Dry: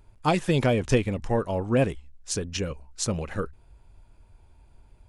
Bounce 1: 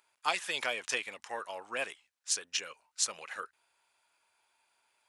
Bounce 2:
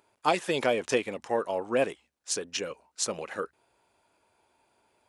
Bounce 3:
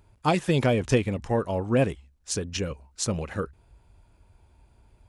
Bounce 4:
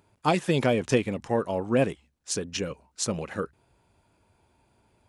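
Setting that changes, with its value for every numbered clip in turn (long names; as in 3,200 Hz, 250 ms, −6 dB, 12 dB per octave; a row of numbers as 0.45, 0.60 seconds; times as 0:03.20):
high-pass filter, corner frequency: 1,300, 410, 43, 150 Hertz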